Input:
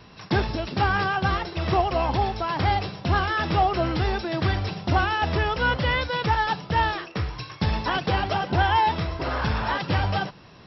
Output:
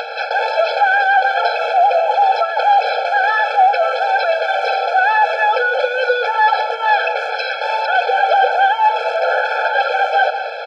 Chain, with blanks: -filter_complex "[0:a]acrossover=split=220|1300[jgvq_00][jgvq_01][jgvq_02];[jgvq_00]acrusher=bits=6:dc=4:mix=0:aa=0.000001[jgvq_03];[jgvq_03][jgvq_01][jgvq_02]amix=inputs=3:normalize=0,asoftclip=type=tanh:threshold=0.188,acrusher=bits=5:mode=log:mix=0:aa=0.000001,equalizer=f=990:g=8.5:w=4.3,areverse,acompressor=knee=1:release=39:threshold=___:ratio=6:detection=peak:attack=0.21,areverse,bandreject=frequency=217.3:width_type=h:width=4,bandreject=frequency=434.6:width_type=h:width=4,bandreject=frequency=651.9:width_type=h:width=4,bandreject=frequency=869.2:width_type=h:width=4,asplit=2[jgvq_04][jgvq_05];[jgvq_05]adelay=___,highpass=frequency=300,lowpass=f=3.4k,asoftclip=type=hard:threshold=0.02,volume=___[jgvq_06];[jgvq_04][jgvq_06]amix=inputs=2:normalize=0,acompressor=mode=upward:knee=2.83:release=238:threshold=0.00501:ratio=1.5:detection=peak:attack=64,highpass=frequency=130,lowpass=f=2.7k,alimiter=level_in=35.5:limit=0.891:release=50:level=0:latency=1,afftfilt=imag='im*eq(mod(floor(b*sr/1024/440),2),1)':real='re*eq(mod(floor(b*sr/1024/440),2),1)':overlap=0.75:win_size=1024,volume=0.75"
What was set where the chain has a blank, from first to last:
0.0316, 190, 0.224